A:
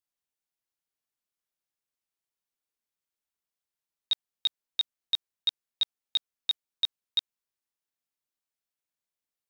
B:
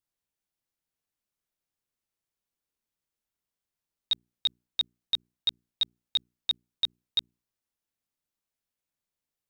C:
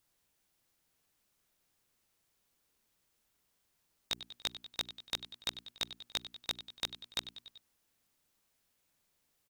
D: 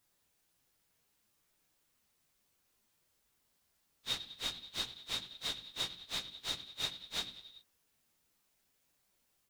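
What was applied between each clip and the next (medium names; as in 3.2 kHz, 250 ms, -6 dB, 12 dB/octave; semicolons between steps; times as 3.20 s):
bass shelf 340 Hz +9.5 dB; hum notches 60/120/180/240/300/360/420 Hz
feedback delay 96 ms, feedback 57%, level -22 dB; spectrum-flattening compressor 2:1; trim +1.5 dB
phase randomisation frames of 100 ms; trim +1 dB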